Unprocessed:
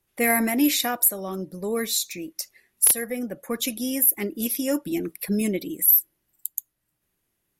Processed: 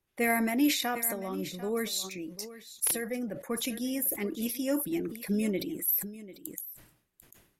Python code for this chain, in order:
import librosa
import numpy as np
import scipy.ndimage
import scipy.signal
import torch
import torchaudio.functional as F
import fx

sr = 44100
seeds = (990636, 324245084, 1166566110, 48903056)

p1 = fx.high_shelf(x, sr, hz=7500.0, db=-8.5)
p2 = p1 + fx.echo_single(p1, sr, ms=744, db=-16.0, dry=0)
p3 = fx.sustainer(p2, sr, db_per_s=98.0)
y = p3 * 10.0 ** (-5.0 / 20.0)